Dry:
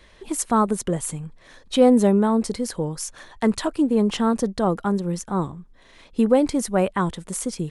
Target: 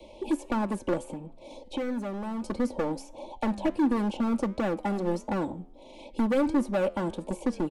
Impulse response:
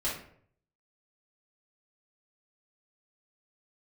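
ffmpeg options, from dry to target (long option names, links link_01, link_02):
-filter_complex "[0:a]acrossover=split=180|3200[link_01][link_02][link_03];[link_01]acompressor=threshold=-36dB:ratio=4[link_04];[link_02]acompressor=threshold=-30dB:ratio=4[link_05];[link_03]acompressor=threshold=-44dB:ratio=4[link_06];[link_04][link_05][link_06]amix=inputs=3:normalize=0,acrossover=split=350|1300[link_07][link_08][link_09];[link_09]alimiter=level_in=9dB:limit=-24dB:level=0:latency=1:release=377,volume=-9dB[link_10];[link_07][link_08][link_10]amix=inputs=3:normalize=0,asuperstop=centerf=1500:order=20:qfactor=1.3,equalizer=frequency=500:width=0.32:gain=15,asoftclip=type=hard:threshold=-18dB,asplit=3[link_11][link_12][link_13];[link_11]afade=type=out:start_time=1.02:duration=0.02[link_14];[link_12]acompressor=threshold=-27dB:ratio=5,afade=type=in:start_time=1.02:duration=0.02,afade=type=out:start_time=2.43:duration=0.02[link_15];[link_13]afade=type=in:start_time=2.43:duration=0.02[link_16];[link_14][link_15][link_16]amix=inputs=3:normalize=0,aecho=1:1:3.5:0.63,flanger=delay=9.3:depth=3.8:regen=-89:speed=1.5:shape=triangular,volume=-1.5dB"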